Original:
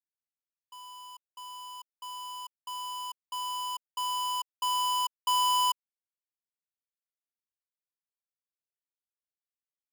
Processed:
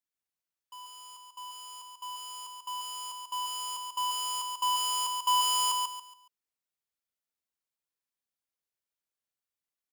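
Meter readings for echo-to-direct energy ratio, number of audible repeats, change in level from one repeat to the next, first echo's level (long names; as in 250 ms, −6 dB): −3.5 dB, 3, −10.5 dB, −4.0 dB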